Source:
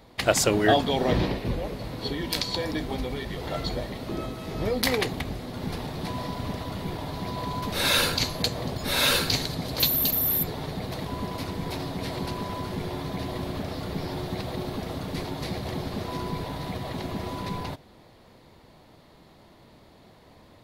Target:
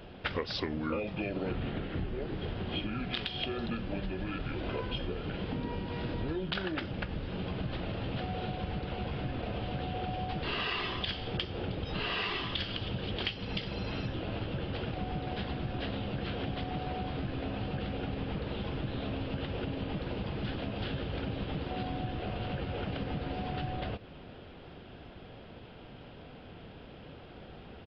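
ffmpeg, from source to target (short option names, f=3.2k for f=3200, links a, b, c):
-af "asetrate=32667,aresample=44100,aresample=11025,aresample=44100,acompressor=threshold=-37dB:ratio=6,volume=4.5dB"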